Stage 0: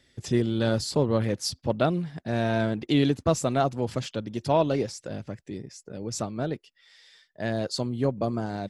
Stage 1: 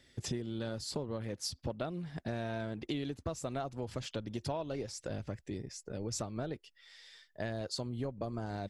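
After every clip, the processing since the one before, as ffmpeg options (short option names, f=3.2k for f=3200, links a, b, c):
-af "asubboost=boost=4:cutoff=75,acompressor=threshold=-33dB:ratio=10,volume=-1dB"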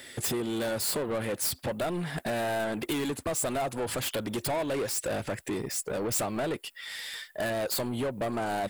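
-filter_complex "[0:a]asplit=2[a][b];[b]highpass=f=720:p=1,volume=28dB,asoftclip=type=tanh:threshold=-22dB[c];[a][c]amix=inputs=2:normalize=0,lowpass=f=2.9k:p=1,volume=-6dB,aexciter=amount=7.9:drive=4:freq=8.1k"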